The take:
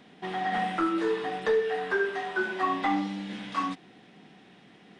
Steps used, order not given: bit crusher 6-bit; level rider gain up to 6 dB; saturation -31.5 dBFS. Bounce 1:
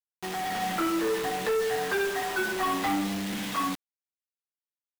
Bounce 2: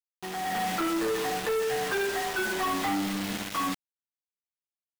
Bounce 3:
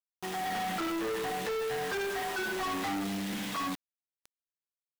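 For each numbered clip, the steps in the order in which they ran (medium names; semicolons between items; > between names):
saturation > level rider > bit crusher; bit crusher > saturation > level rider; level rider > bit crusher > saturation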